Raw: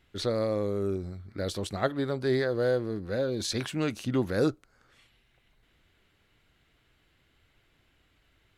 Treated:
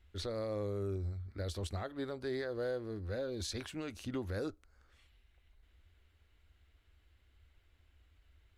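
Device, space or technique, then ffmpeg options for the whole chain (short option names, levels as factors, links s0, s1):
car stereo with a boomy subwoofer: -af "lowshelf=f=100:t=q:w=3:g=9.5,alimiter=limit=0.0794:level=0:latency=1:release=181,volume=0.422"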